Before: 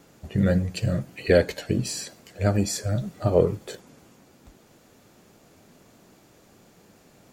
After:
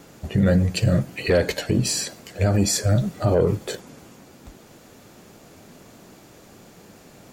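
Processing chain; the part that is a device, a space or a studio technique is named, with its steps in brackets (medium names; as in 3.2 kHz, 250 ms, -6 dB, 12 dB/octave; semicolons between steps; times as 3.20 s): soft clipper into limiter (saturation -10 dBFS, distortion -20 dB; peak limiter -18.5 dBFS, peak gain reduction 7.5 dB); trim +7.5 dB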